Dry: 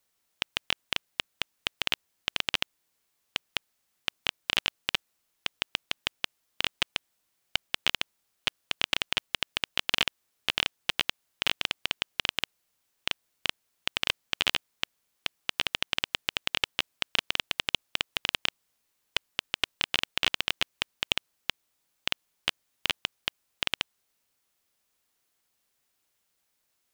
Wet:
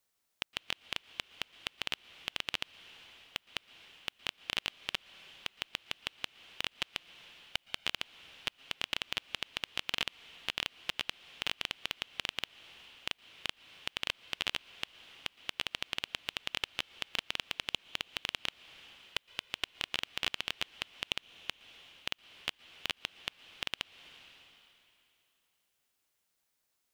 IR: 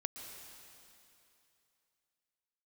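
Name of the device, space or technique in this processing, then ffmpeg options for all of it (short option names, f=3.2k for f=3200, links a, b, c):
compressed reverb return: -filter_complex "[0:a]asplit=2[a][b];[1:a]atrim=start_sample=2205[c];[b][c]afir=irnorm=-1:irlink=0,acompressor=threshold=-40dB:ratio=6,volume=-1.5dB[d];[a][d]amix=inputs=2:normalize=0,volume=-8.5dB"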